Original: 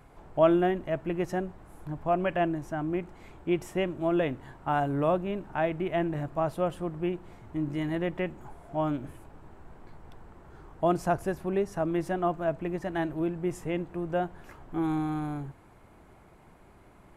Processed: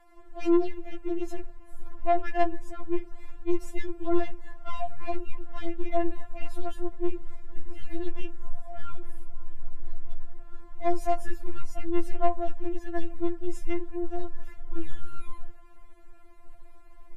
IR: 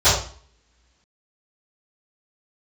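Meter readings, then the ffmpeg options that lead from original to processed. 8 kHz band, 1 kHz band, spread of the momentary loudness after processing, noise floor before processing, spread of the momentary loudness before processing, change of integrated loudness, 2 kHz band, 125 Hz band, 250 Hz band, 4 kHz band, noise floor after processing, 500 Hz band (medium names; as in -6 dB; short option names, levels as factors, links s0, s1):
-2.5 dB, -3.0 dB, 20 LU, -56 dBFS, 10 LU, -3.0 dB, -5.5 dB, -7.0 dB, -2.5 dB, -5.0 dB, -46 dBFS, -4.0 dB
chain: -af "aeval=exprs='(tanh(17.8*val(0)+0.2)-tanh(0.2))/17.8':c=same,asubboost=boost=11:cutoff=87,afftfilt=real='re*4*eq(mod(b,16),0)':imag='im*4*eq(mod(b,16),0)':win_size=2048:overlap=0.75"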